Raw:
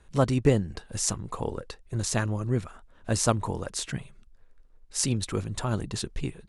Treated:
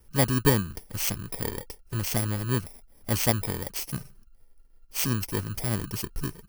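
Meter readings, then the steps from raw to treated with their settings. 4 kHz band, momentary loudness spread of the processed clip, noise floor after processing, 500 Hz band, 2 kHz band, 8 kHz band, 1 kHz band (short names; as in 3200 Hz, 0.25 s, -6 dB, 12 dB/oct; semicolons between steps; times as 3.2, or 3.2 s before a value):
+1.0 dB, 12 LU, -57 dBFS, -2.5 dB, +3.0 dB, -2.0 dB, -1.5 dB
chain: FFT order left unsorted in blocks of 32 samples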